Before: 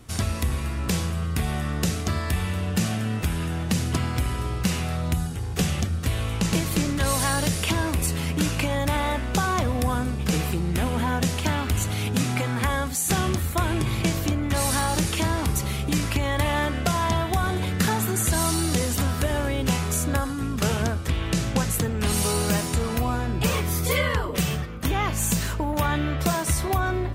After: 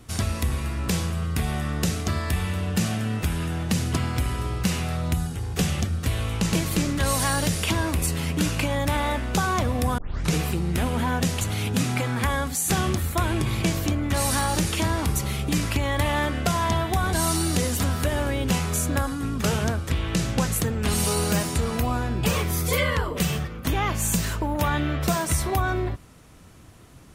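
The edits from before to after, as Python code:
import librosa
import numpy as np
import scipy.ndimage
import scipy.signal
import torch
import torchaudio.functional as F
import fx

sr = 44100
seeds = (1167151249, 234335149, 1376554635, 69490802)

y = fx.edit(x, sr, fx.tape_start(start_s=9.98, length_s=0.36),
    fx.cut(start_s=11.41, length_s=0.4),
    fx.cut(start_s=17.53, length_s=0.78), tone=tone)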